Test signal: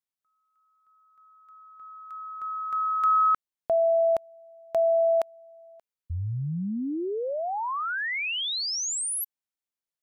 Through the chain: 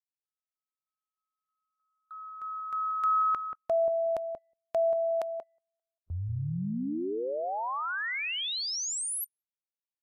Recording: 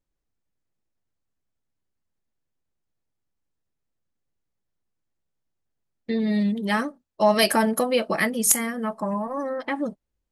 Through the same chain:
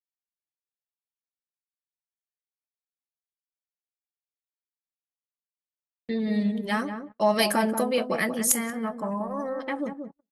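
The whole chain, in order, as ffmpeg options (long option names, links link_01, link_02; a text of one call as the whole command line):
ffmpeg -i in.wav -filter_complex "[0:a]asplit=2[link_01][link_02];[link_02]adelay=183,lowpass=frequency=870:poles=1,volume=-6dB,asplit=2[link_03][link_04];[link_04]adelay=183,lowpass=frequency=870:poles=1,volume=0.2,asplit=2[link_05][link_06];[link_06]adelay=183,lowpass=frequency=870:poles=1,volume=0.2[link_07];[link_01][link_03][link_05][link_07]amix=inputs=4:normalize=0,agate=range=-31dB:threshold=-44dB:ratio=16:release=30:detection=rms,volume=-3.5dB" -ar 32000 -c:a libvorbis -b:a 96k out.ogg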